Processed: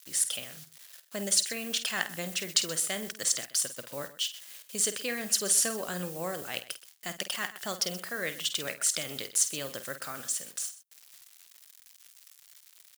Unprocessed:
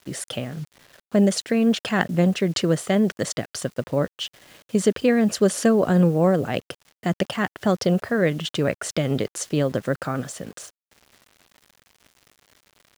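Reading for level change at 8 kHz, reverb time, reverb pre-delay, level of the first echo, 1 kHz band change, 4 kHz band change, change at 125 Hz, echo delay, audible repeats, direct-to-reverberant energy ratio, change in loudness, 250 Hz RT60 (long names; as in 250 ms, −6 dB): +6.0 dB, no reverb audible, no reverb audible, −11.0 dB, −11.5 dB, +0.5 dB, −22.0 dB, 50 ms, 2, no reverb audible, −7.5 dB, no reverb audible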